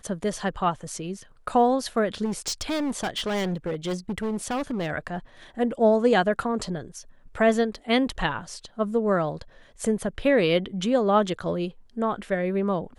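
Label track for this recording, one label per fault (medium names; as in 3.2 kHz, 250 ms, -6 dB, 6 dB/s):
2.240000	4.910000	clipped -24 dBFS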